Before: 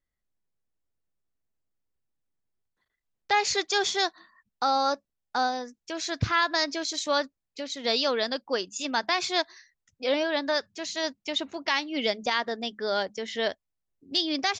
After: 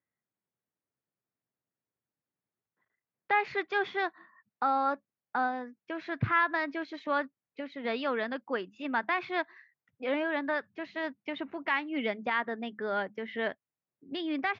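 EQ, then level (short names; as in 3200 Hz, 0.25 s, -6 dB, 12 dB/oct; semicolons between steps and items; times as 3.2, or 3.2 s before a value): HPF 110 Hz 24 dB/oct; LPF 2300 Hz 24 dB/oct; dynamic EQ 570 Hz, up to -6 dB, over -40 dBFS, Q 1.1; 0.0 dB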